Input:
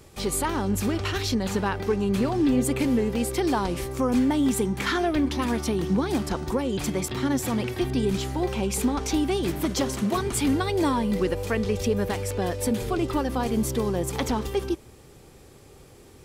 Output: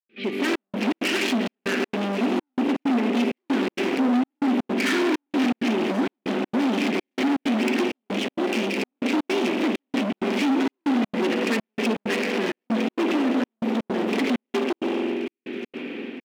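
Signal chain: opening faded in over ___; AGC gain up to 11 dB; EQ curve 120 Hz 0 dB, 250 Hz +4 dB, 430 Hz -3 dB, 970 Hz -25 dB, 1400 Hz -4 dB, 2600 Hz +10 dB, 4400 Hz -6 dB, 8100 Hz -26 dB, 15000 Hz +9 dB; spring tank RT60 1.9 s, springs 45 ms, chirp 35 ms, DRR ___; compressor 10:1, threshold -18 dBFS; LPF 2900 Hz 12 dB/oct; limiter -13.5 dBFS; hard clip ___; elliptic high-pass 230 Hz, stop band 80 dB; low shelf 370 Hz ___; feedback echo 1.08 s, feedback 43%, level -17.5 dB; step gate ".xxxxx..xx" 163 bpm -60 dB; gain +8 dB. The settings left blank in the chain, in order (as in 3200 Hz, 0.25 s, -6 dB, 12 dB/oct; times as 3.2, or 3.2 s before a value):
0.52 s, 5.5 dB, -28 dBFS, +2 dB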